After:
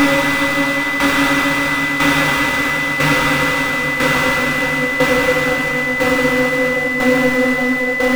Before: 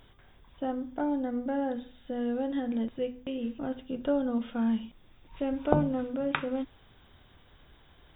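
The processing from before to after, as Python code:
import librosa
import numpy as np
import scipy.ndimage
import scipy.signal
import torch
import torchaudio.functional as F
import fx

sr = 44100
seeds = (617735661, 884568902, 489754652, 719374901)

p1 = fx.power_curve(x, sr, exponent=0.35)
p2 = fx.paulstretch(p1, sr, seeds[0], factor=48.0, window_s=0.25, from_s=6.32)
p3 = np.where(np.abs(p2) >= 10.0 ** (-18.0 / 20.0), p2, 0.0)
p4 = p2 + (p3 * 10.0 ** (-7.0 / 20.0))
p5 = fx.tremolo_shape(p4, sr, shape='saw_down', hz=1.0, depth_pct=65)
p6 = p5 + 10.0 ** (-16.0 / 20.0) * np.sin(2.0 * np.pi * 2000.0 * np.arange(len(p5)) / sr)
y = p6 * 10.0 ** (-1.5 / 20.0)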